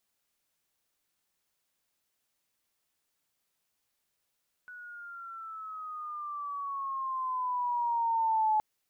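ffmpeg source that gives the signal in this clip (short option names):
-f lavfi -i "aevalsrc='pow(10,(-23+20.5*(t/3.92-1))/20)*sin(2*PI*1480*3.92/(-9.5*log(2)/12)*(exp(-9.5*log(2)/12*t/3.92)-1))':d=3.92:s=44100"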